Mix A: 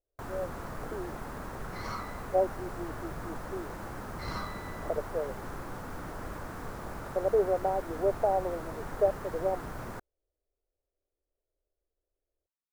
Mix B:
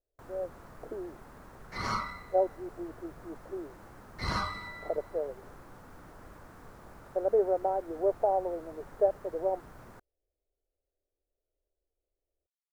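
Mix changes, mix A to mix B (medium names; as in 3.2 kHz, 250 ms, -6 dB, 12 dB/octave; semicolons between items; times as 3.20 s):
first sound -11.0 dB; second sound +7.0 dB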